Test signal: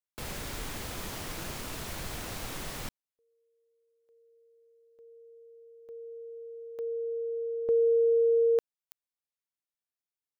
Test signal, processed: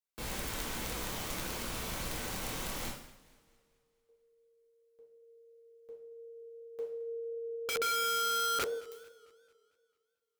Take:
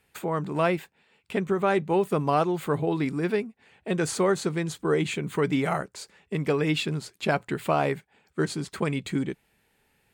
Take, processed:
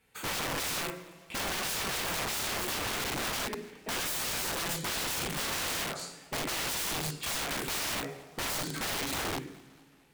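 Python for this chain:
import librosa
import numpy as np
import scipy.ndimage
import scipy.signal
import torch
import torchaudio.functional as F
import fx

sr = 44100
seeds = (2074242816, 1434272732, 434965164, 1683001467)

y = fx.rev_double_slope(x, sr, seeds[0], early_s=0.6, late_s=2.1, knee_db=-25, drr_db=-4.0)
y = (np.mod(10.0 ** (23.5 / 20.0) * y + 1.0, 2.0) - 1.0) / 10.0 ** (23.5 / 20.0)
y = fx.echo_warbled(y, sr, ms=223, feedback_pct=50, rate_hz=2.8, cents=162, wet_db=-22.0)
y = y * librosa.db_to_amplitude(-5.0)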